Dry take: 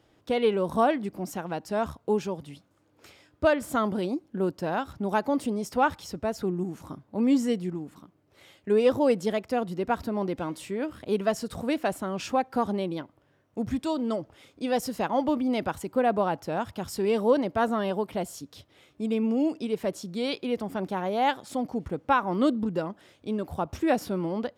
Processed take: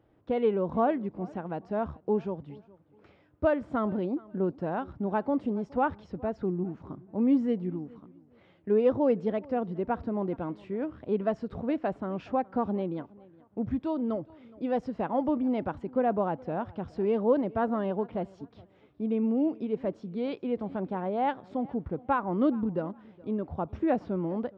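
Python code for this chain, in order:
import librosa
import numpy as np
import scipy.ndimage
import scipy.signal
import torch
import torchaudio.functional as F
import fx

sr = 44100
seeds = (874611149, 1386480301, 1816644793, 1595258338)

y = fx.spacing_loss(x, sr, db_at_10k=45)
y = fx.echo_feedback(y, sr, ms=418, feedback_pct=25, wet_db=-23)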